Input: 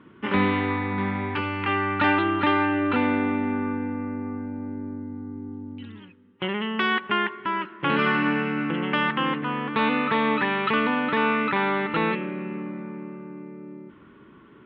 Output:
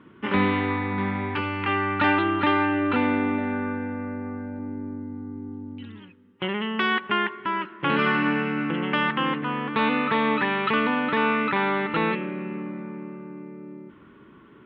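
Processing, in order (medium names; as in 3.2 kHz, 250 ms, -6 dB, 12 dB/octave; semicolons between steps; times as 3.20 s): 3.38–4.59 s: graphic EQ with 31 bands 315 Hz -7 dB, 630 Hz +10 dB, 1 kHz -4 dB, 1.6 kHz +6 dB, 4 kHz +5 dB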